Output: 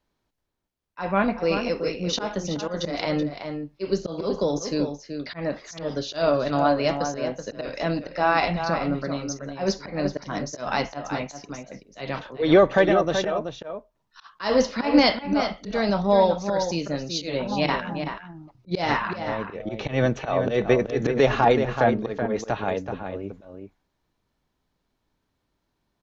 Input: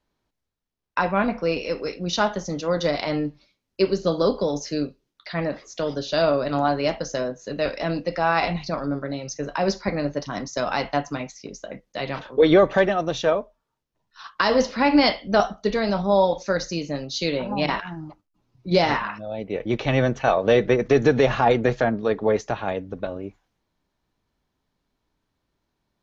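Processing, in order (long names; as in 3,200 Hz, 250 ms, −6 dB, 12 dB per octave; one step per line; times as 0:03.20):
volume swells 147 ms
slap from a distant wall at 65 metres, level −7 dB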